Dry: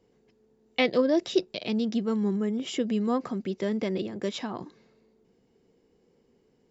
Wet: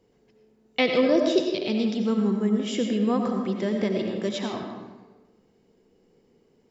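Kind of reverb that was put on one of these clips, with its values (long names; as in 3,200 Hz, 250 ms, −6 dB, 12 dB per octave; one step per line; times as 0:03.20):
comb and all-pass reverb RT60 1.2 s, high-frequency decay 0.65×, pre-delay 50 ms, DRR 2.5 dB
level +1.5 dB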